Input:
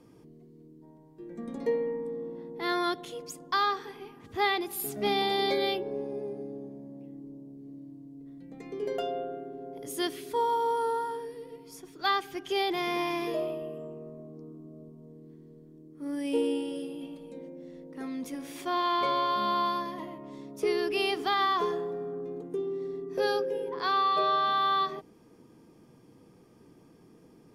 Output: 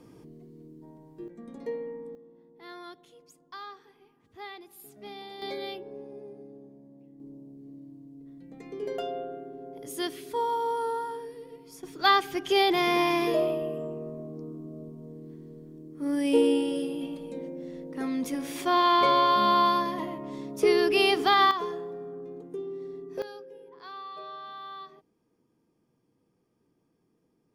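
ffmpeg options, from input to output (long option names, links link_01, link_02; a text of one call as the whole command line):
ffmpeg -i in.wav -af "asetnsamples=nb_out_samples=441:pad=0,asendcmd='1.28 volume volume -6dB;2.15 volume volume -15.5dB;5.42 volume volume -8dB;7.2 volume volume -1dB;11.83 volume volume 6dB;21.51 volume volume -3.5dB;23.22 volume volume -15.5dB',volume=4dB" out.wav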